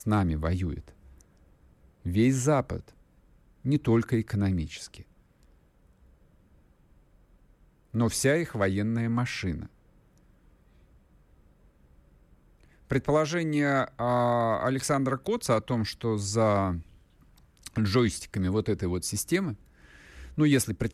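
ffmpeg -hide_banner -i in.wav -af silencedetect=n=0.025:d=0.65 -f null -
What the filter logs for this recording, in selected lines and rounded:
silence_start: 0.79
silence_end: 2.06 | silence_duration: 1.26
silence_start: 2.77
silence_end: 3.65 | silence_duration: 0.88
silence_start: 4.94
silence_end: 7.95 | silence_duration: 3.00
silence_start: 9.63
silence_end: 12.91 | silence_duration: 3.27
silence_start: 16.79
silence_end: 17.66 | silence_duration: 0.87
silence_start: 19.53
silence_end: 20.38 | silence_duration: 0.85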